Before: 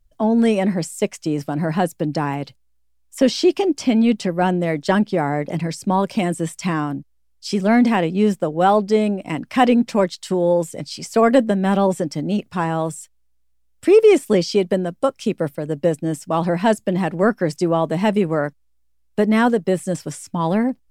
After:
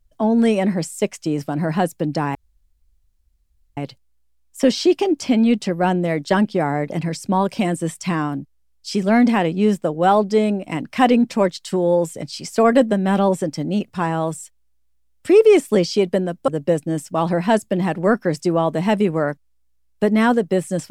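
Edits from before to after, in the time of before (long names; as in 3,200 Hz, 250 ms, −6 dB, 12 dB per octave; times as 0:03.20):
0:02.35: splice in room tone 1.42 s
0:15.06–0:15.64: remove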